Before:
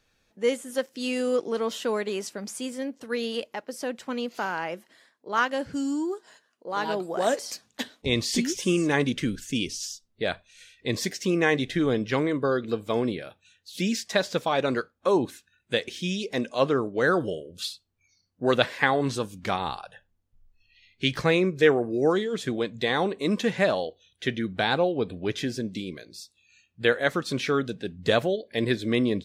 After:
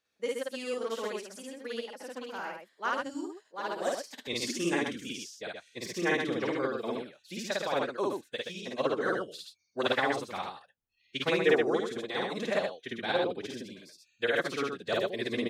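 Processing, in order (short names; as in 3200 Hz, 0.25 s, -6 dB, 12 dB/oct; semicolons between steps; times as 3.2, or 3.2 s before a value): HPF 390 Hz 6 dB/oct; time stretch by phase-locked vocoder 0.53×; loudspeakers at several distances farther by 18 m 0 dB, 43 m -3 dB; upward expander 1.5:1, over -33 dBFS; gain -3 dB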